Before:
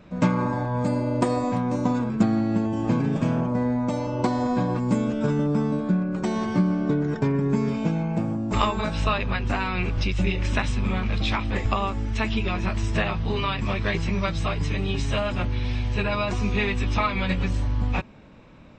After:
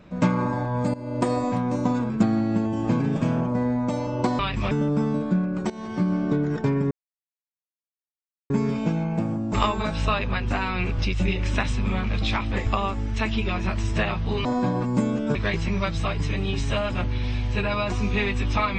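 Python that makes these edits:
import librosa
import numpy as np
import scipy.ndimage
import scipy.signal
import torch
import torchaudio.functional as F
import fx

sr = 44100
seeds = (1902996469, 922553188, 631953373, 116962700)

y = fx.edit(x, sr, fx.fade_in_from(start_s=0.94, length_s=0.34, floor_db=-16.5),
    fx.swap(start_s=4.39, length_s=0.9, other_s=13.44, other_length_s=0.32),
    fx.fade_in_from(start_s=6.28, length_s=0.46, floor_db=-16.0),
    fx.insert_silence(at_s=7.49, length_s=1.59), tone=tone)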